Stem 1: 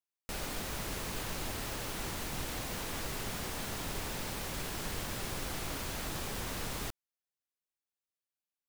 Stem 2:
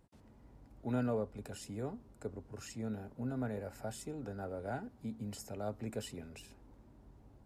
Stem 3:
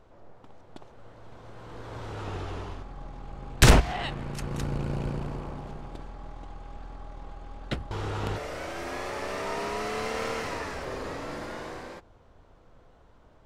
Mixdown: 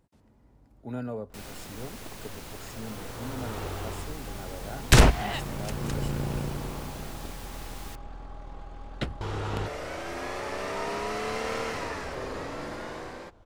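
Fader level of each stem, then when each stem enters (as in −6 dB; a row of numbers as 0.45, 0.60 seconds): −5.0, −0.5, 0.0 decibels; 1.05, 0.00, 1.30 seconds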